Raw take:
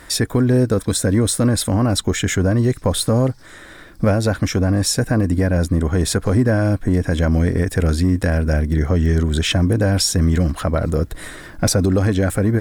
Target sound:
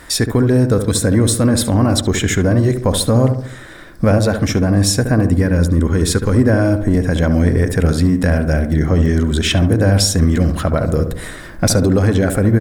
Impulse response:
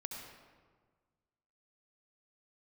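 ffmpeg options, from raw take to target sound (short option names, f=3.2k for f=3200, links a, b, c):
-filter_complex "[0:a]asettb=1/sr,asplit=3[a][b][c];[a]atrim=end=5.344[d];[b]atrim=start=5.34:end=6.37,asetpts=PTS-STARTPTS,afade=t=in:d=0.004:c=qsin,afade=t=out:st=1.026:d=0.004:c=qsin,equalizer=f=700:w=5.1:g=-13.5[e];[c]atrim=start=6.366[f];[d][e]acrossfade=d=0.004:c1=hsin:c2=qsin[g];[g][f]acrossfade=d=0.004:c1=qsin:c2=hsin,asplit=2[h][i];[i]adelay=70,lowpass=f=1.3k:p=1,volume=-7dB,asplit=2[j][k];[k]adelay=70,lowpass=f=1.3k:p=1,volume=0.52,asplit=2[l][m];[m]adelay=70,lowpass=f=1.3k:p=1,volume=0.52,asplit=2[n][o];[o]adelay=70,lowpass=f=1.3k:p=1,volume=0.52,asplit=2[p][q];[q]adelay=70,lowpass=f=1.3k:p=1,volume=0.52,asplit=2[r][s];[s]adelay=70,lowpass=f=1.3k:p=1,volume=0.52[t];[h][j][l][n][p][r][t]amix=inputs=7:normalize=0,volume=2.5dB"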